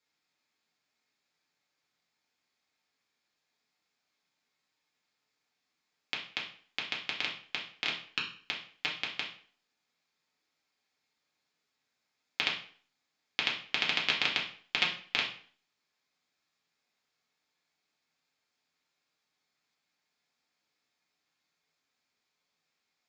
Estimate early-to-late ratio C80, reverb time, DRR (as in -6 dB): 12.0 dB, 0.45 s, -3.0 dB